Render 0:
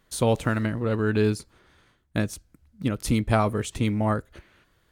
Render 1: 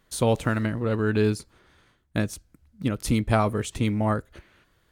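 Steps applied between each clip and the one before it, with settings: no audible change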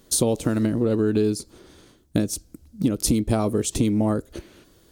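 FFT filter 130 Hz 0 dB, 320 Hz +9 dB, 970 Hz -3 dB, 1.9 kHz -7 dB, 5.4 kHz +7 dB; compression 6:1, threshold -26 dBFS, peak gain reduction 12.5 dB; trim +7.5 dB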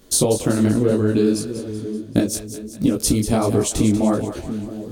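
two-band feedback delay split 520 Hz, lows 678 ms, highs 191 ms, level -10.5 dB; detune thickener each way 49 cents; trim +7.5 dB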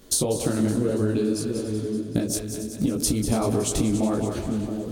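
compression, threshold -20 dBFS, peak gain reduction 9 dB; on a send: echo whose repeats swap between lows and highs 141 ms, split 1.2 kHz, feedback 69%, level -10 dB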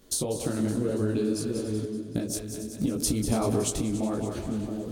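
tremolo saw up 0.54 Hz, depth 40%; trim -2 dB

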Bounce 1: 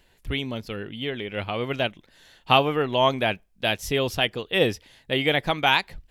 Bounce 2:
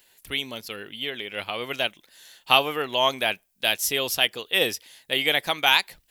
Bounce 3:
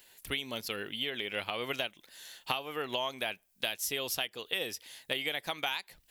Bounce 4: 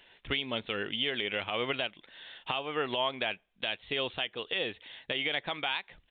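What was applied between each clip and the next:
RIAA curve recording; trim -1.5 dB
compression 12:1, threshold -30 dBFS, peak gain reduction 19 dB
resampled via 8 kHz; peak limiter -23 dBFS, peak gain reduction 9 dB; trim +4.5 dB

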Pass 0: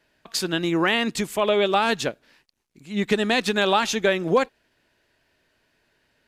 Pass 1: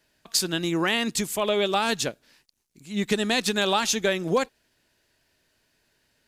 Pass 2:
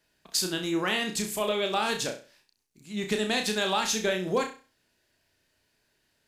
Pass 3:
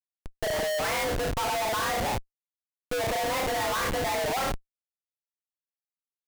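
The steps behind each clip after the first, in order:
tone controls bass +3 dB, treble +10 dB; trim -4 dB
flutter echo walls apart 5.6 m, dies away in 0.35 s; trim -4.5 dB
spectral gate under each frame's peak -20 dB strong; mistuned SSB +280 Hz 200–2200 Hz; Schmitt trigger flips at -40 dBFS; trim +5 dB

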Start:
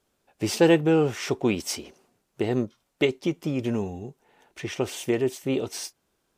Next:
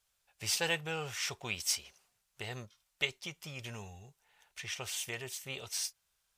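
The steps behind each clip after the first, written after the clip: amplifier tone stack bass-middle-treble 10-0-10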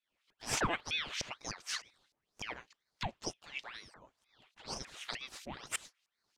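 LFO band-pass saw up 3.3 Hz 340–4900 Hz; ring modulator with a swept carrier 1.6 kHz, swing 90%, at 2.1 Hz; trim +10.5 dB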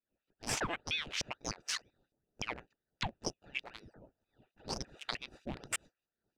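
local Wiener filter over 41 samples; compression 10:1, threshold -38 dBFS, peak gain reduction 11.5 dB; trim +6.5 dB

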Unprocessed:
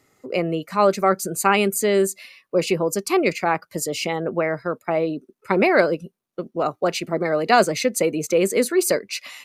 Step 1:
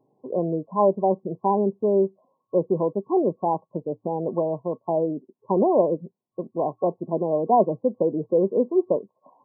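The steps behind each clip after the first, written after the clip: FFT band-pass 110–1100 Hz; trim -1.5 dB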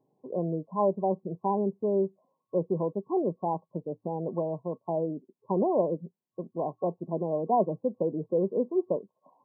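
peaking EQ 170 Hz +4.5 dB 0.4 oct; trim -6.5 dB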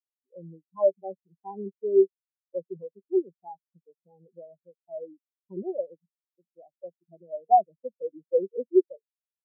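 in parallel at -2 dB: compression, threshold -33 dBFS, peak gain reduction 13.5 dB; on the sum: spectral contrast expander 4:1; trim +3 dB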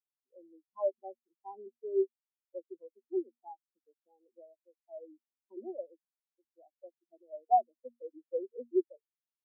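rippled Chebyshev high-pass 230 Hz, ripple 6 dB; trim -5.5 dB

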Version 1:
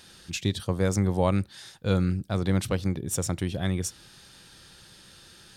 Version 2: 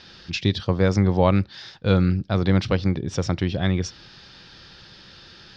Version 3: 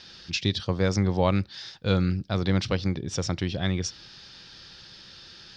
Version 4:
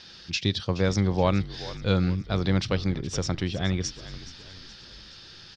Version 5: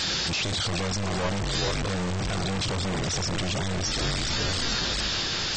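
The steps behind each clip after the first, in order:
elliptic low-pass 5.3 kHz, stop band 80 dB; trim +6.5 dB
treble shelf 4.3 kHz +11.5 dB; trim -5 dB
frequency-shifting echo 422 ms, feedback 53%, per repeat -49 Hz, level -15.5 dB
one-bit comparator; AAC 24 kbps 32 kHz

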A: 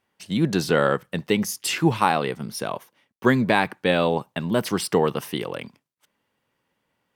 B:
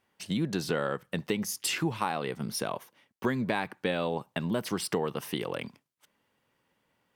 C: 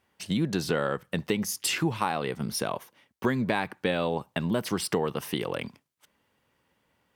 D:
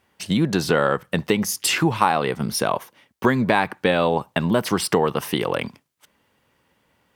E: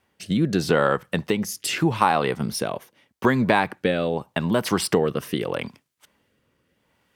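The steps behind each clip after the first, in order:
compression 3:1, threshold -29 dBFS, peak gain reduction 12.5 dB
peaking EQ 68 Hz +8.5 dB 0.65 oct; trim +2.5 dB
dynamic bell 990 Hz, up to +4 dB, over -39 dBFS, Q 0.8; trim +6.5 dB
rotary cabinet horn 0.8 Hz

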